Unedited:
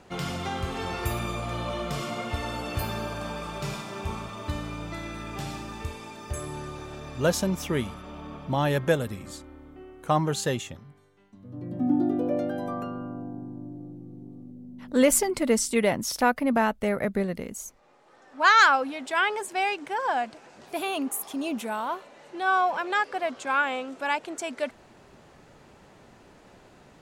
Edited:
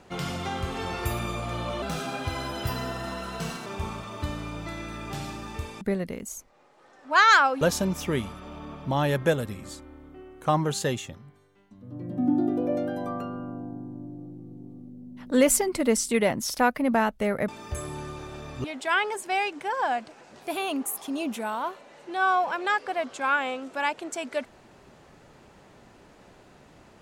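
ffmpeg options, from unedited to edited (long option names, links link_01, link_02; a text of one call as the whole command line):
ffmpeg -i in.wav -filter_complex "[0:a]asplit=7[link_01][link_02][link_03][link_04][link_05][link_06][link_07];[link_01]atrim=end=1.824[link_08];[link_02]atrim=start=1.82:end=3.92,asetpts=PTS-STARTPTS,asetrate=50274,aresample=44100[link_09];[link_03]atrim=start=3.916:end=6.072[link_10];[link_04]atrim=start=17.098:end=18.902[link_11];[link_05]atrim=start=7.228:end=17.102[link_12];[link_06]atrim=start=6.068:end=7.232[link_13];[link_07]atrim=start=18.898[link_14];[link_08][link_09]acrossfade=duration=0.004:curve1=hsin:curve2=hsin[link_15];[link_15][link_10]acrossfade=duration=0.004:curve1=hsin:curve2=hsin[link_16];[link_16][link_11]acrossfade=duration=0.004:curve1=hsin:curve2=hsin[link_17];[link_17][link_12]acrossfade=duration=0.004:curve1=hsin:curve2=hsin[link_18];[link_18][link_13]acrossfade=duration=0.004:curve1=hsin:curve2=hsin[link_19];[link_19][link_14]acrossfade=duration=0.004:curve1=hsin:curve2=hsin" out.wav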